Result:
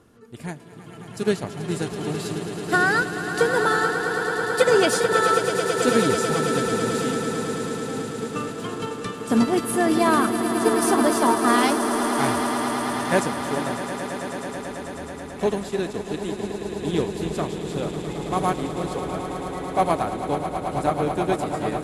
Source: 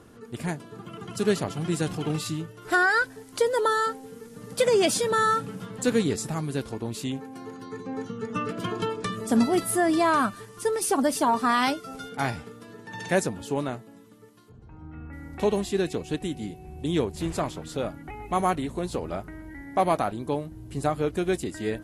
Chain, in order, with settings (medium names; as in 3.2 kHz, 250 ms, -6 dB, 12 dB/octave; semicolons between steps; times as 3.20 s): 20.96–21.50 s: crackle 35 per s -45 dBFS; echo with a slow build-up 109 ms, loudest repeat 8, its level -10 dB; upward expansion 1.5:1, over -31 dBFS; trim +3 dB